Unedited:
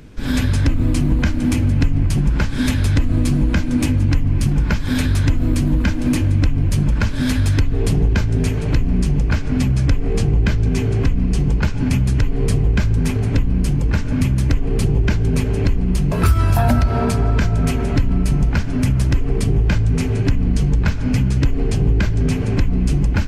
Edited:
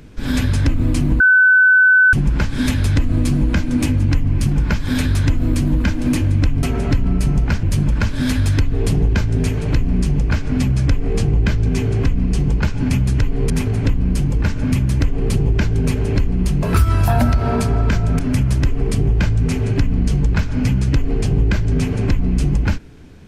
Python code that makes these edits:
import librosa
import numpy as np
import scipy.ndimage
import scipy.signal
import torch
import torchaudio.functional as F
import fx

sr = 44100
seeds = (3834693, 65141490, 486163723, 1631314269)

y = fx.edit(x, sr, fx.bleep(start_s=1.2, length_s=0.93, hz=1510.0, db=-7.5),
    fx.cut(start_s=12.5, length_s=0.49),
    fx.move(start_s=17.68, length_s=1.0, to_s=6.63), tone=tone)